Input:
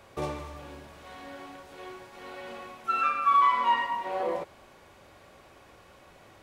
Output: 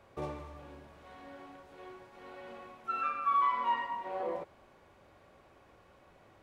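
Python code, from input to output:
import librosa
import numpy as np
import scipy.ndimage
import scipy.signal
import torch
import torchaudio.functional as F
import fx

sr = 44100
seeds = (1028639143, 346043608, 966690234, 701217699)

y = fx.high_shelf(x, sr, hz=2700.0, db=-9.0)
y = y * librosa.db_to_amplitude(-5.5)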